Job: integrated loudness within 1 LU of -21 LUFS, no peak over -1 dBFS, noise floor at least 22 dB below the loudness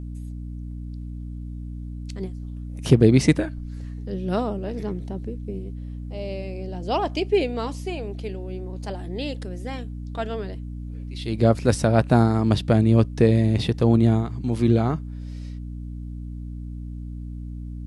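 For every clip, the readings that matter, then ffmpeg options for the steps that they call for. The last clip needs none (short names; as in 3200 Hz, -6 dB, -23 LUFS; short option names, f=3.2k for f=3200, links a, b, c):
hum 60 Hz; harmonics up to 300 Hz; hum level -31 dBFS; loudness -23.0 LUFS; peak -3.5 dBFS; loudness target -21.0 LUFS
-> -af "bandreject=f=60:t=h:w=6,bandreject=f=120:t=h:w=6,bandreject=f=180:t=h:w=6,bandreject=f=240:t=h:w=6,bandreject=f=300:t=h:w=6"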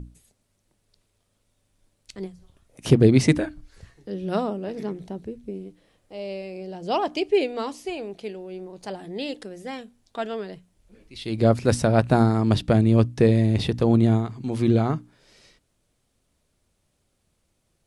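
hum none; loudness -22.5 LUFS; peak -3.5 dBFS; loudness target -21.0 LUFS
-> -af "volume=1.5dB"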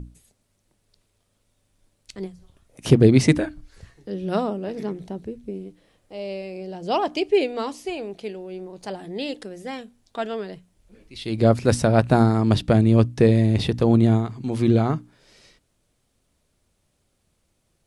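loudness -21.0 LUFS; peak -2.0 dBFS; noise floor -70 dBFS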